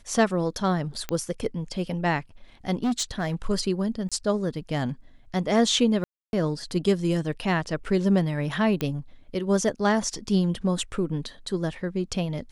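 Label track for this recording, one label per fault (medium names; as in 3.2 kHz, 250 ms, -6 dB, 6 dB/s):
1.090000	1.090000	pop -14 dBFS
2.830000	3.350000	clipped -21 dBFS
4.090000	4.120000	dropout 26 ms
6.040000	6.330000	dropout 291 ms
8.810000	8.810000	pop -13 dBFS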